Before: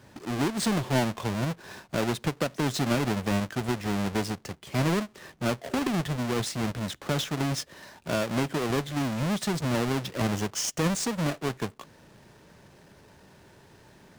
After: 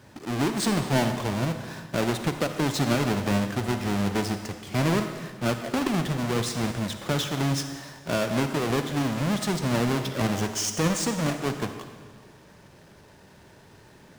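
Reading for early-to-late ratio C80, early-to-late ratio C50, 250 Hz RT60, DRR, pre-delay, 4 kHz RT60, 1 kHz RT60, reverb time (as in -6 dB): 8.5 dB, 7.5 dB, 1.7 s, 7.0 dB, 40 ms, 1.4 s, 1.5 s, 1.6 s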